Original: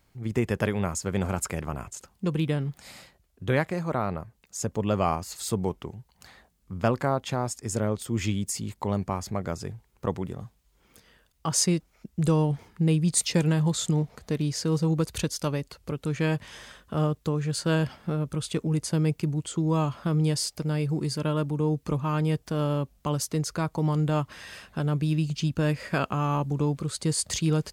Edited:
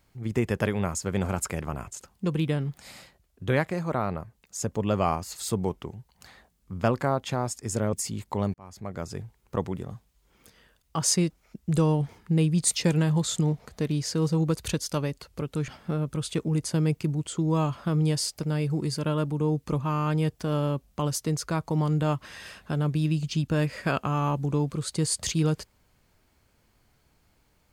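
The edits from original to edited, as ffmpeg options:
ffmpeg -i in.wav -filter_complex "[0:a]asplit=10[link_01][link_02][link_03][link_04][link_05][link_06][link_07][link_08][link_09][link_10];[link_01]atrim=end=7.932[link_11];[link_02]atrim=start=8.428:end=9.04,asetpts=PTS-STARTPTS,afade=type=out:start_time=0.608:duration=0.004:curve=hsin[link_12];[link_03]atrim=start=9.04:end=16.182,asetpts=PTS-STARTPTS,afade=type=in:duration=0.66[link_13];[link_04]atrim=start=17.868:end=22.132[link_14];[link_05]atrim=start=22.108:end=22.132[link_15];[link_06]atrim=start=22.108:end=22.132[link_16];[link_07]atrim=start=22.108:end=22.132[link_17];[link_08]atrim=start=22.108:end=22.132[link_18];[link_09]atrim=start=22.108:end=22.132[link_19];[link_10]atrim=start=22.108[link_20];[link_12][link_13]concat=n=2:v=0:a=1[link_21];[link_11][link_21]acrossfade=duration=0.004:curve1=hsin:curve2=hsin[link_22];[link_22][link_14]acrossfade=duration=0.004:curve1=hsin:curve2=hsin[link_23];[link_23][link_15]acrossfade=duration=0.004:curve1=hsin:curve2=hsin[link_24];[link_24][link_16]acrossfade=duration=0.004:curve1=hsin:curve2=hsin[link_25];[link_25][link_17]acrossfade=duration=0.004:curve1=hsin:curve2=hsin[link_26];[link_26][link_18]acrossfade=duration=0.004:curve1=hsin:curve2=hsin[link_27];[link_27][link_19]acrossfade=duration=0.004:curve1=hsin:curve2=hsin[link_28];[link_28][link_20]acrossfade=duration=0.004:curve1=hsin:curve2=hsin" out.wav

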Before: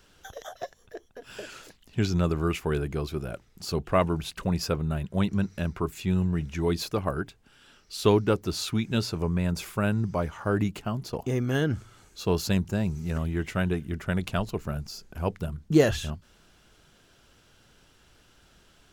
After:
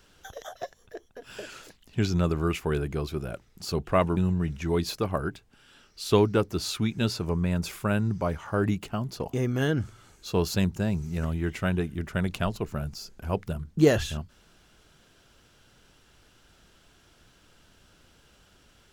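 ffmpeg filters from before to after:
ffmpeg -i in.wav -filter_complex "[0:a]asplit=2[link_01][link_02];[link_01]atrim=end=4.172[link_03];[link_02]atrim=start=6.098[link_04];[link_03][link_04]acrossfade=duration=0.004:curve1=hsin:curve2=hsin" out.wav

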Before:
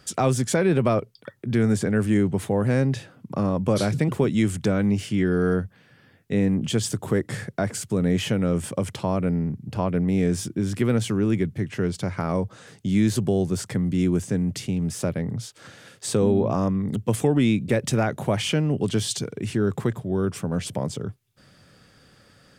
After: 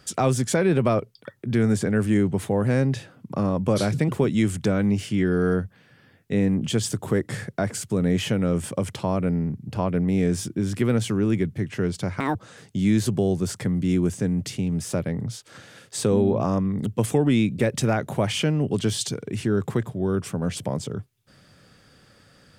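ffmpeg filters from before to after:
ffmpeg -i in.wav -filter_complex "[0:a]asplit=3[link_01][link_02][link_03];[link_01]atrim=end=12.204[link_04];[link_02]atrim=start=12.2:end=12.45,asetpts=PTS-STARTPTS,asetrate=72324,aresample=44100[link_05];[link_03]atrim=start=12.446[link_06];[link_04][link_05]acrossfade=duration=0.004:curve1=hsin:curve2=hsin[link_07];[link_07][link_06]acrossfade=duration=0.004:curve1=hsin:curve2=hsin" out.wav

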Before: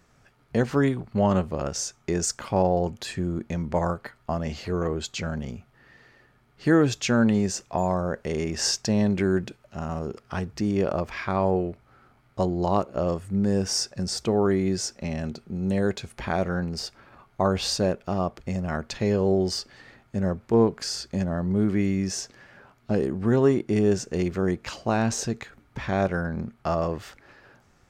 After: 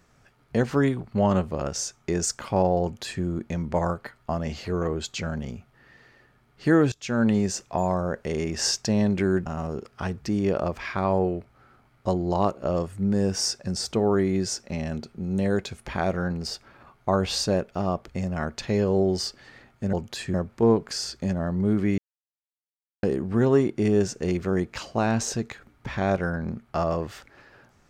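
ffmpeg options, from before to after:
ffmpeg -i in.wav -filter_complex "[0:a]asplit=7[link_01][link_02][link_03][link_04][link_05][link_06][link_07];[link_01]atrim=end=6.92,asetpts=PTS-STARTPTS,afade=type=out:start_time=6.916:duration=0.004:curve=hsin:silence=0.0707946[link_08];[link_02]atrim=start=6.92:end=9.462,asetpts=PTS-STARTPTS,afade=type=in:duration=0.37:silence=0.0707946[link_09];[link_03]atrim=start=9.778:end=20.252[link_10];[link_04]atrim=start=2.818:end=3.232[link_11];[link_05]atrim=start=20.248:end=21.89,asetpts=PTS-STARTPTS,afade=type=out:start_time=1.638:duration=0.004:curve=hsin[link_12];[link_06]atrim=start=21.89:end=22.94,asetpts=PTS-STARTPTS,volume=0[link_13];[link_07]atrim=start=22.94,asetpts=PTS-STARTPTS,afade=type=in:duration=0.004:curve=hsin[link_14];[link_08][link_09]concat=n=2:v=0:a=1[link_15];[link_15][link_10]acrossfade=duration=0.004:curve1=hsin:curve2=hsin[link_16];[link_16][link_11]acrossfade=duration=0.004:curve1=hsin:curve2=hsin[link_17];[link_12][link_13][link_14]concat=n=3:v=0:a=1[link_18];[link_17][link_18]acrossfade=duration=0.004:curve1=hsin:curve2=hsin" out.wav

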